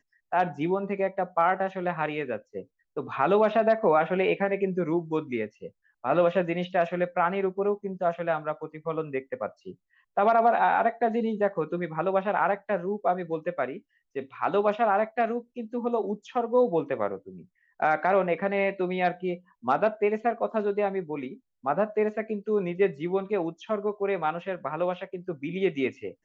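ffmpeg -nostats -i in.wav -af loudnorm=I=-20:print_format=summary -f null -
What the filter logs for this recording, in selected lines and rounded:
Input Integrated:    -27.5 LUFS
Input True Peak:     -10.5 dBTP
Input LRA:             4.1 LU
Input Threshold:     -37.8 LUFS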